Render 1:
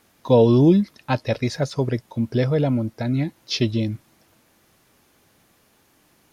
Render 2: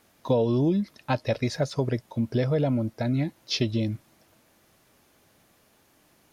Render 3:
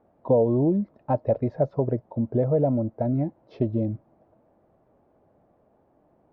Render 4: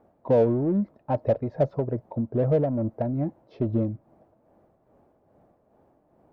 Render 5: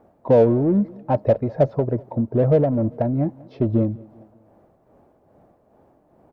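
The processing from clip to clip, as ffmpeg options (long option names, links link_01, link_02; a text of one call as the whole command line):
ffmpeg -i in.wav -af "equalizer=frequency=620:width_type=o:width=0.36:gain=3.5,acompressor=threshold=-17dB:ratio=6,volume=-2.5dB" out.wav
ffmpeg -i in.wav -af "lowpass=frequency=690:width_type=q:width=1.7" out.wav
ffmpeg -i in.wav -filter_complex "[0:a]tremolo=f=2.4:d=0.52,asplit=2[link_01][link_02];[link_02]asoftclip=type=tanh:threshold=-29dB,volume=-7dB[link_03];[link_01][link_03]amix=inputs=2:normalize=0" out.wav
ffmpeg -i in.wav -af "aecho=1:1:197|394|591:0.0668|0.0321|0.0154,volume=5.5dB" out.wav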